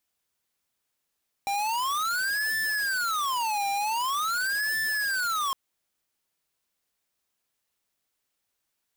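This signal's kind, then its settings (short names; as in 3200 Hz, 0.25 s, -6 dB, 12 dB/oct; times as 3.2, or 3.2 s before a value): siren wail 797–1760 Hz 0.45/s square -27.5 dBFS 4.06 s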